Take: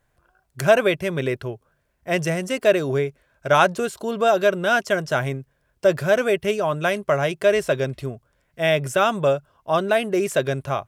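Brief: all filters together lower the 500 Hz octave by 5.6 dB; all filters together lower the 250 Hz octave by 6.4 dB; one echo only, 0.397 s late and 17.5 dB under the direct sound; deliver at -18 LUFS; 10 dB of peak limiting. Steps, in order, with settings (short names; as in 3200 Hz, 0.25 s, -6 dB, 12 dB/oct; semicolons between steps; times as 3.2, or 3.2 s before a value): bell 250 Hz -8.5 dB; bell 500 Hz -5.5 dB; limiter -13.5 dBFS; echo 0.397 s -17.5 dB; gain +9 dB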